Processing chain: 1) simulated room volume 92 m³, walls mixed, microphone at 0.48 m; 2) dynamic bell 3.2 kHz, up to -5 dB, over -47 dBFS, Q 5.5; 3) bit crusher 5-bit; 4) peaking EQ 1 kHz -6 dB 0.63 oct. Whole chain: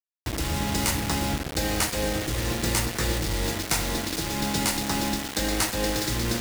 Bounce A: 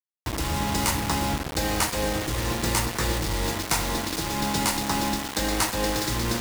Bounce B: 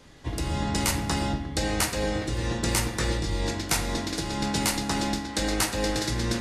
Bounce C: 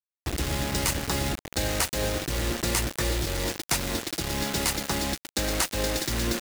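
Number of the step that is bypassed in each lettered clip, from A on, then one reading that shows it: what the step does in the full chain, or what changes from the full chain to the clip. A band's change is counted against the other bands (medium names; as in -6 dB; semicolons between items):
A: 4, 1 kHz band +3.5 dB; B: 3, distortion -8 dB; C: 1, 250 Hz band -2.0 dB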